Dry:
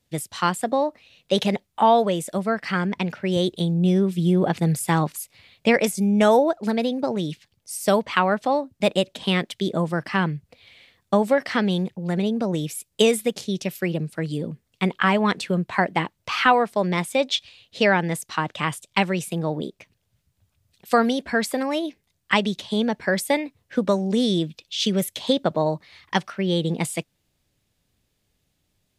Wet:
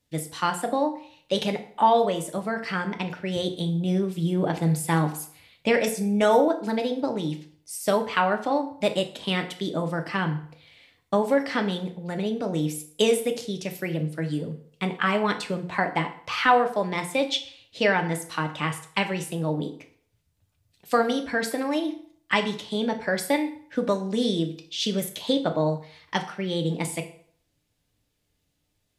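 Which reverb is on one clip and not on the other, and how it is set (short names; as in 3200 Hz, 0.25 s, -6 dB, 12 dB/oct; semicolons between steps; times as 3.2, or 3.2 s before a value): FDN reverb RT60 0.57 s, low-frequency decay 0.85×, high-frequency decay 0.8×, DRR 4.5 dB; gain -4 dB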